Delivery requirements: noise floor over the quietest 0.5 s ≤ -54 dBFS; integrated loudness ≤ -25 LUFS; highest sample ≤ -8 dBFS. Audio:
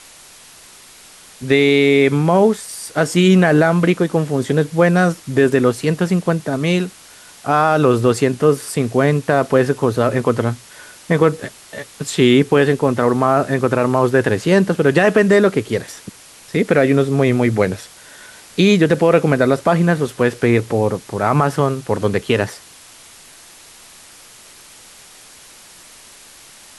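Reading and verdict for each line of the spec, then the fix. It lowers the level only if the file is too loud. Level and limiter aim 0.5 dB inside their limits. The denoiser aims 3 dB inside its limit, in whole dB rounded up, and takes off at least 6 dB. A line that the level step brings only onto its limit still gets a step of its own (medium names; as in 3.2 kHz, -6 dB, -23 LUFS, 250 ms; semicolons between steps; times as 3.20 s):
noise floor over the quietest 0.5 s -43 dBFS: fail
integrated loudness -16.0 LUFS: fail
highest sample -2.5 dBFS: fail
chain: noise reduction 6 dB, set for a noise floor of -43 dBFS; trim -9.5 dB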